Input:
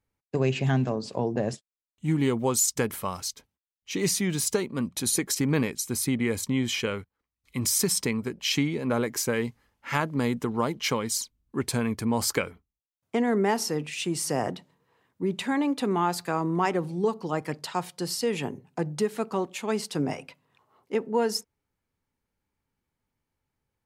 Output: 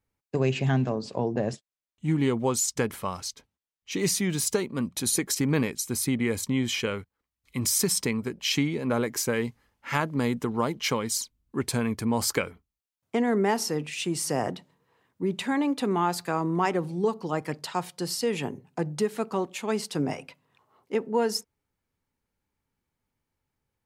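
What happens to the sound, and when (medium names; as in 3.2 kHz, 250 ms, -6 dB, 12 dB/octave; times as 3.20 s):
0.65–3.92 s: treble shelf 11 kHz -11.5 dB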